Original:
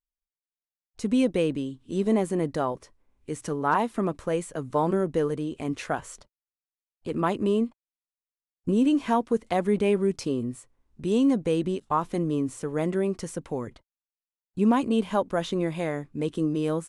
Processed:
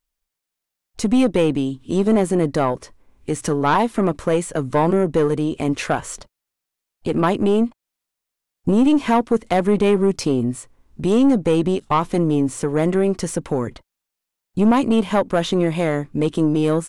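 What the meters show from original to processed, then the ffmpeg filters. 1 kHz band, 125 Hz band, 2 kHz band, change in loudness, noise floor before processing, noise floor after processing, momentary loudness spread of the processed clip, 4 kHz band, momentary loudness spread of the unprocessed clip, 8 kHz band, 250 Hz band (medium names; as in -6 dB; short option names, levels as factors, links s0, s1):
+7.0 dB, +9.0 dB, +7.5 dB, +7.5 dB, under -85 dBFS, -83 dBFS, 9 LU, +8.5 dB, 11 LU, +10.0 dB, +7.5 dB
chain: -filter_complex "[0:a]asplit=2[s0][s1];[s1]acompressor=threshold=0.0178:ratio=6,volume=0.891[s2];[s0][s2]amix=inputs=2:normalize=0,aeval=exprs='(tanh(7.08*val(0)+0.3)-tanh(0.3))/7.08':c=same,volume=2.51"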